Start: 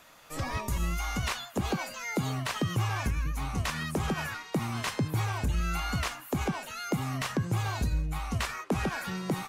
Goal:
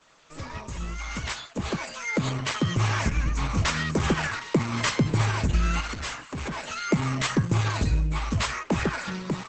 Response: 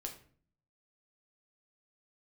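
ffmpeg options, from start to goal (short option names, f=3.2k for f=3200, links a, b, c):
-filter_complex "[0:a]bandreject=f=60:t=h:w=6,bandreject=f=120:t=h:w=6,acontrast=37,asuperstop=centerf=740:order=12:qfactor=6.7,dynaudnorm=f=790:g=5:m=11.5dB,asplit=3[a][b][c];[a]afade=t=out:st=5.8:d=0.02[d];[b]aeval=exprs='(tanh(10*val(0)+0.15)-tanh(0.15))/10':c=same,afade=t=in:st=5.8:d=0.02,afade=t=out:st=6.64:d=0.02[e];[c]afade=t=in:st=6.64:d=0.02[f];[d][e][f]amix=inputs=3:normalize=0,adynamicequalizer=threshold=0.0126:dfrequency=2100:dqfactor=7.3:tfrequency=2100:tqfactor=7.3:attack=5:release=100:ratio=0.375:range=1.5:mode=boostabove:tftype=bell,volume=-8dB" -ar 48000 -c:a libopus -b:a 10k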